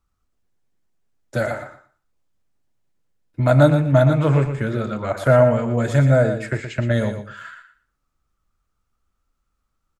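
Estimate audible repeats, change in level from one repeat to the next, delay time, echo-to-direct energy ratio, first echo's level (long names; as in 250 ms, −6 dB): 2, −15.0 dB, 118 ms, −9.0 dB, −9.0 dB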